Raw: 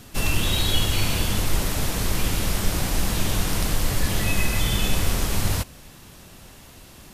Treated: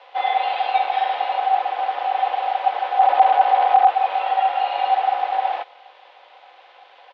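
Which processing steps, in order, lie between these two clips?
0:02.99–0:03.90: each half-wave held at its own peak
comb filter 4.1 ms, depth 77%
background noise violet −30 dBFS
ring modulation 700 Hz
single-sideband voice off tune +68 Hz 380–3,300 Hz
level −1 dB

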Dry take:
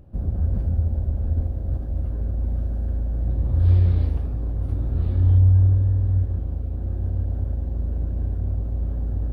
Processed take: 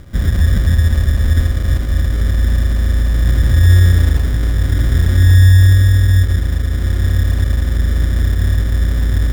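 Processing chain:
in parallel at +3 dB: brickwall limiter −16 dBFS, peak gain reduction 7.5 dB
on the sum: decimation without filtering 25×
level +3 dB

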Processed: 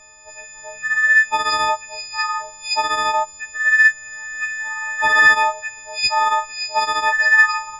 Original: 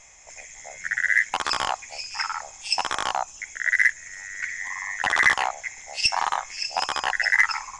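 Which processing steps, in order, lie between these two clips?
every partial snapped to a pitch grid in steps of 6 semitones
low-pass filter 1,400 Hz 6 dB per octave
level +3.5 dB

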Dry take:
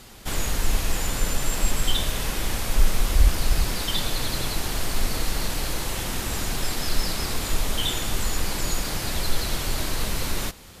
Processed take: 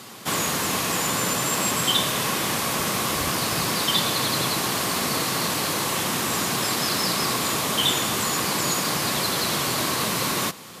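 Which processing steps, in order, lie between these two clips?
high-pass filter 130 Hz 24 dB per octave
parametric band 1,100 Hz +8.5 dB 0.21 octaves
level +5.5 dB

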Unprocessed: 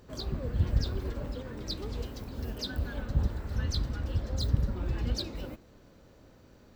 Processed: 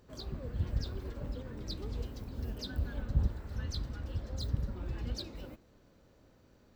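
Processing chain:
0:01.21–0:03.32: low-shelf EQ 270 Hz +5.5 dB
level −6.5 dB

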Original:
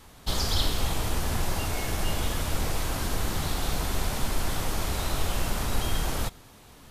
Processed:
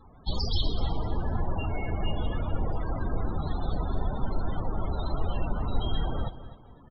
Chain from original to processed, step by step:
spectral peaks only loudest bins 32
repeating echo 251 ms, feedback 27%, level −14 dB

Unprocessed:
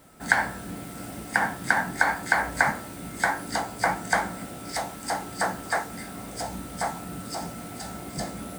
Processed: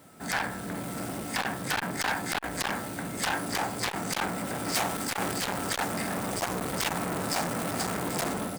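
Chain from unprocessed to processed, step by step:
high-pass filter 96 Hz 12 dB per octave
low-shelf EQ 210 Hz +2.5 dB
automatic gain control gain up to 12 dB
single-tap delay 381 ms −21 dB
wave folding −18.5 dBFS
0:04.95–0:05.56: transient designer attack −11 dB, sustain +9 dB
saturating transformer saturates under 1,500 Hz

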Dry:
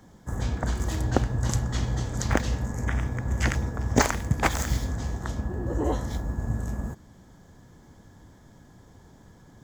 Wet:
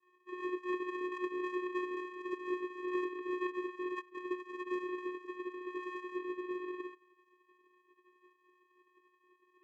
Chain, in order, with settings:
gate on every frequency bin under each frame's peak −25 dB weak
linear-phase brick-wall band-pass 160–2,000 Hz
channel vocoder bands 4, square 362 Hz
level +8.5 dB

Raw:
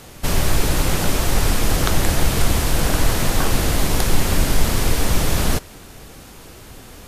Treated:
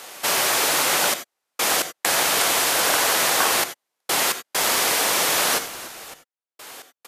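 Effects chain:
high-pass filter 650 Hz 12 dB per octave
echo with shifted repeats 292 ms, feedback 36%, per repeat −100 Hz, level −16.5 dB
gate pattern "xxxxx..x.xx" 66 BPM −60 dB
reverb whose tail is shaped and stops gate 110 ms rising, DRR 10.5 dB
level +5 dB

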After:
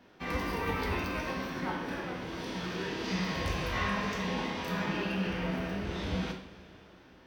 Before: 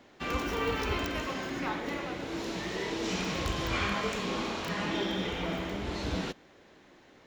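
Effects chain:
coupled-rooms reverb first 0.52 s, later 3.8 s, from −18 dB, DRR 0.5 dB
formants moved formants −3 semitones
level −3.5 dB

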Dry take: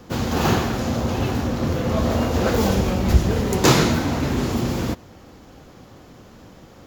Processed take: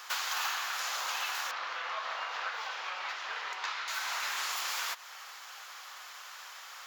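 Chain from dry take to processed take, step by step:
high-pass filter 1,100 Hz 24 dB per octave
downward compressor 6 to 1, threshold −40 dBFS, peak gain reduction 21.5 dB
0:01.51–0:03.88: high-frequency loss of the air 220 metres
level +8 dB

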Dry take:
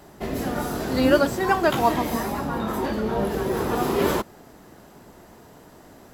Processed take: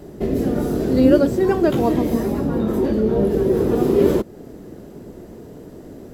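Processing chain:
low shelf with overshoot 630 Hz +11 dB, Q 1.5
in parallel at +0.5 dB: downward compressor, threshold −22 dBFS, peak gain reduction 18 dB
on the sum: level −7 dB

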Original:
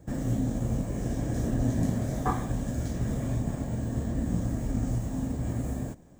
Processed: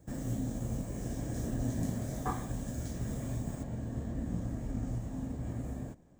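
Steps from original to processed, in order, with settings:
high-shelf EQ 5,300 Hz +7 dB, from 0:03.63 −5.5 dB
level −7 dB

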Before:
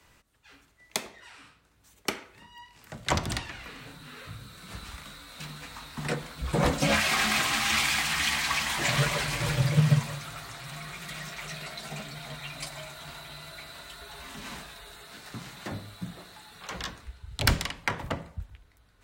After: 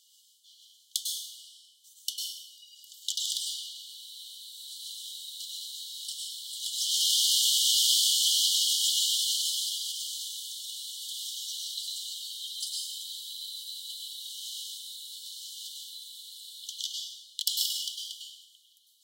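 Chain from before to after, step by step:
soft clipping −19 dBFS, distortion −14 dB
linear-phase brick-wall high-pass 2,900 Hz
dense smooth reverb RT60 1.4 s, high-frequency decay 0.6×, pre-delay 90 ms, DRR −3 dB
level +4.5 dB

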